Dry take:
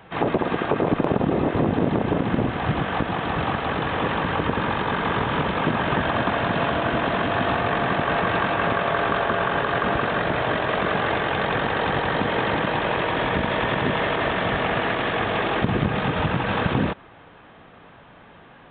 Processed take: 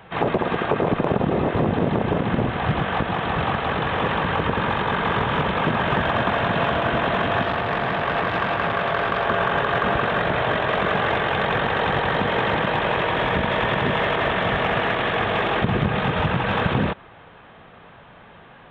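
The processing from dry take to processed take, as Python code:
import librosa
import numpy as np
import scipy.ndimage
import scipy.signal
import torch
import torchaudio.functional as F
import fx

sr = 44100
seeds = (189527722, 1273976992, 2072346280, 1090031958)

p1 = fx.peak_eq(x, sr, hz=290.0, db=-5.5, octaves=0.44)
p2 = np.clip(10.0 ** (18.0 / 20.0) * p1, -1.0, 1.0) / 10.0 ** (18.0 / 20.0)
p3 = p1 + (p2 * librosa.db_to_amplitude(-12.0))
y = fx.transformer_sat(p3, sr, knee_hz=1000.0, at=(7.42, 9.26))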